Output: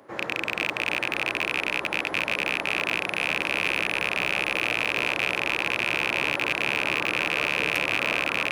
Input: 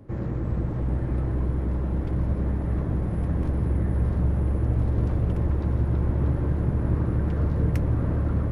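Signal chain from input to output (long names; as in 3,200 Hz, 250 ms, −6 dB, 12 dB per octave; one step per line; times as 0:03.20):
loose part that buzzes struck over −24 dBFS, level −18 dBFS
high-pass filter 720 Hz 12 dB per octave
in parallel at −7.5 dB: soft clipping −33 dBFS, distortion −5 dB
on the sum: level +7 dB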